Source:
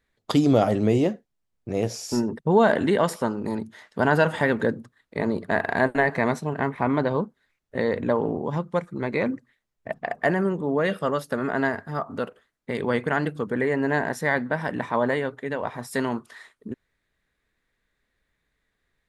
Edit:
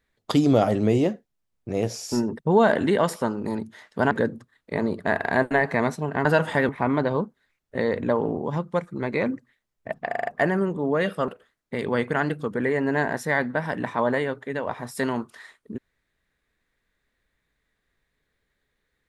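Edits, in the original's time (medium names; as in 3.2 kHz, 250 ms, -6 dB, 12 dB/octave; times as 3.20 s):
4.11–4.55 s: move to 6.69 s
10.10 s: stutter 0.04 s, 5 plays
11.12–12.24 s: delete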